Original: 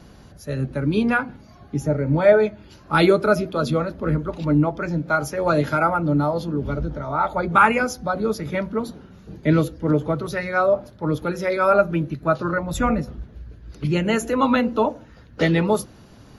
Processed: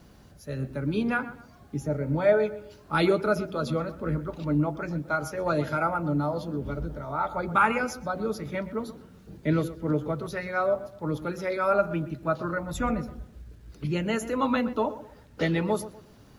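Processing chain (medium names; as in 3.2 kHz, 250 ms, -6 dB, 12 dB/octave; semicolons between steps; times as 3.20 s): bit crusher 10-bit; on a send: tape echo 124 ms, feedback 36%, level -13.5 dB, low-pass 1.9 kHz; on the sum: trim -7 dB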